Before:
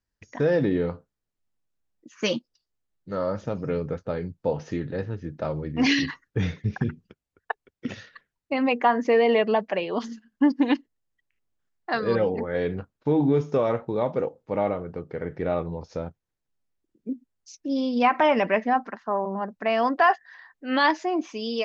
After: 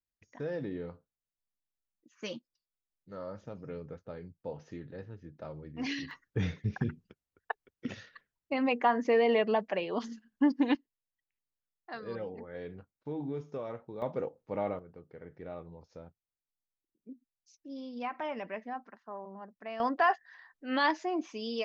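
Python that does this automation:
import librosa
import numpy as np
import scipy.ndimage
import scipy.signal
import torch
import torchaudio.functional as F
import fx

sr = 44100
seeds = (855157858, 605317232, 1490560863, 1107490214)

y = fx.gain(x, sr, db=fx.steps((0.0, -14.5), (6.11, -6.0), (10.75, -16.0), (14.02, -8.5), (14.79, -17.0), (19.8, -7.0)))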